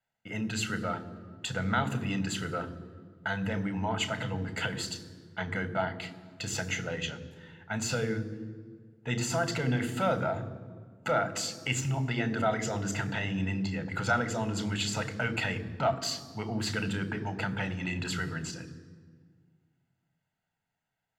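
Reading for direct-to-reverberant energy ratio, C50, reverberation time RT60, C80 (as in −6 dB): 12.0 dB, 15.5 dB, 1.8 s, 16.5 dB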